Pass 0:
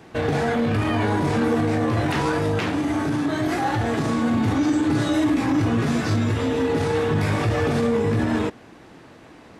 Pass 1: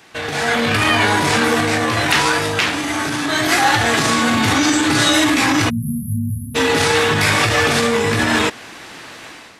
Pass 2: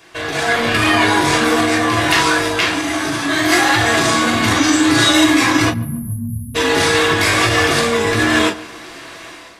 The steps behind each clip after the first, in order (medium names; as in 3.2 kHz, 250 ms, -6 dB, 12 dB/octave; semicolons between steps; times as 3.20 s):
tilt shelf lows -9.5 dB; level rider gain up to 12 dB; spectral selection erased 5.70–6.55 s, 250–10000 Hz
filtered feedback delay 142 ms, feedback 49%, low-pass 1.5 kHz, level -18 dB; reverberation, pre-delay 3 ms, DRR 1 dB; trim -2 dB